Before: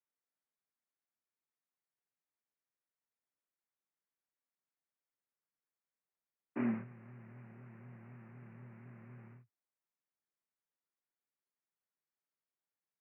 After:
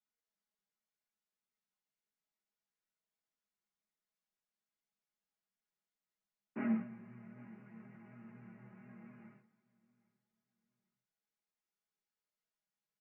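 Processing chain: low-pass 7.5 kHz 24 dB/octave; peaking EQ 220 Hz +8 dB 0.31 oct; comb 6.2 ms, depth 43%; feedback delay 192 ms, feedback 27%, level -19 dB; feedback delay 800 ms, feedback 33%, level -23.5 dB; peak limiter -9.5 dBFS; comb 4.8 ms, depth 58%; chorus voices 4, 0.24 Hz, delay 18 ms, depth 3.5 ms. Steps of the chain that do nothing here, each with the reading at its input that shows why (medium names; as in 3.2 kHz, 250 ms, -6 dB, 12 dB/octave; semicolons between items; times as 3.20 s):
low-pass 7.5 kHz: input has nothing above 910 Hz; peak limiter -9.5 dBFS: peak at its input -23.5 dBFS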